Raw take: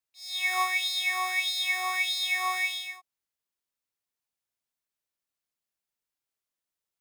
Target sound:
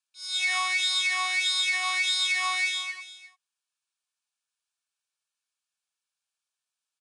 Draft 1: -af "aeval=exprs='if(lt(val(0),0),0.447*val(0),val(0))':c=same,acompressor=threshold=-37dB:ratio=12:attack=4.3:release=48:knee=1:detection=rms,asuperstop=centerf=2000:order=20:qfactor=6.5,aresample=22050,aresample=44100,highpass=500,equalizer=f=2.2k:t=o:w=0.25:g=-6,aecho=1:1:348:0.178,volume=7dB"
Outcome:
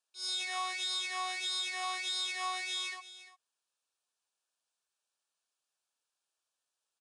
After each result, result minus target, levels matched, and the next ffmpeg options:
500 Hz band +10.0 dB; compressor: peak gain reduction +9.5 dB; 2000 Hz band -3.5 dB
-af "aeval=exprs='if(lt(val(0),0),0.447*val(0),val(0))':c=same,acompressor=threshold=-37dB:ratio=12:attack=4.3:release=48:knee=1:detection=rms,asuperstop=centerf=2000:order=20:qfactor=6.5,aresample=22050,aresample=44100,highpass=1.1k,equalizer=f=2.2k:t=o:w=0.25:g=-6,aecho=1:1:348:0.178,volume=7dB"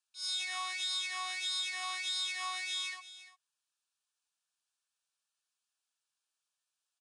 compressor: peak gain reduction +9.5 dB; 2000 Hz band -3.5 dB
-af "aeval=exprs='if(lt(val(0),0),0.447*val(0),val(0))':c=same,acompressor=threshold=-26.5dB:ratio=12:attack=4.3:release=48:knee=1:detection=rms,asuperstop=centerf=2000:order=20:qfactor=6.5,aresample=22050,aresample=44100,highpass=1.1k,equalizer=f=2.2k:t=o:w=0.25:g=-6,aecho=1:1:348:0.178,volume=7dB"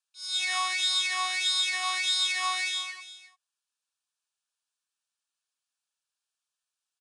2000 Hz band -3.0 dB
-af "aeval=exprs='if(lt(val(0),0),0.447*val(0),val(0))':c=same,acompressor=threshold=-26.5dB:ratio=12:attack=4.3:release=48:knee=1:detection=rms,asuperstop=centerf=2000:order=20:qfactor=6.5,aresample=22050,aresample=44100,highpass=1.1k,aecho=1:1:348:0.178,volume=7dB"

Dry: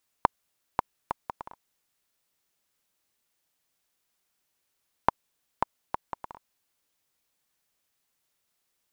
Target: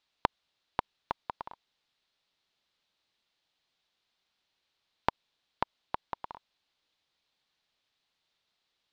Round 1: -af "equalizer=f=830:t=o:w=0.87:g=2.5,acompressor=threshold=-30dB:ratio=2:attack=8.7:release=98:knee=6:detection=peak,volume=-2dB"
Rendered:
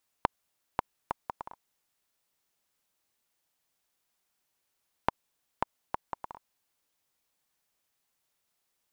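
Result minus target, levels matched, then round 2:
4000 Hz band -4.5 dB
-af "lowpass=f=3.9k:t=q:w=2.6,equalizer=f=830:t=o:w=0.87:g=2.5,acompressor=threshold=-30dB:ratio=2:attack=8.7:release=98:knee=6:detection=peak,volume=-2dB"

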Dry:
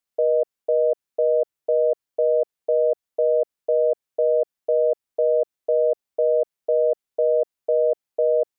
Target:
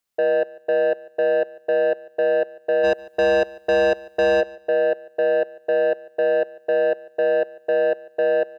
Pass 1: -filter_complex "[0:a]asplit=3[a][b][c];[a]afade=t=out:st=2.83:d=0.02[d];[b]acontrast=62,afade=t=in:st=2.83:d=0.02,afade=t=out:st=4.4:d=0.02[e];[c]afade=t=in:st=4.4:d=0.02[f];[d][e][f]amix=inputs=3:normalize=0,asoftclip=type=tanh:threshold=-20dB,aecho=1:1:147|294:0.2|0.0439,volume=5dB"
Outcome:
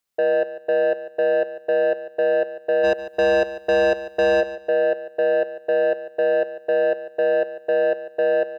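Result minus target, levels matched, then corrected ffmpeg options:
echo-to-direct +7.5 dB
-filter_complex "[0:a]asplit=3[a][b][c];[a]afade=t=out:st=2.83:d=0.02[d];[b]acontrast=62,afade=t=in:st=2.83:d=0.02,afade=t=out:st=4.4:d=0.02[e];[c]afade=t=in:st=4.4:d=0.02[f];[d][e][f]amix=inputs=3:normalize=0,asoftclip=type=tanh:threshold=-20dB,aecho=1:1:147|294:0.0841|0.0185,volume=5dB"

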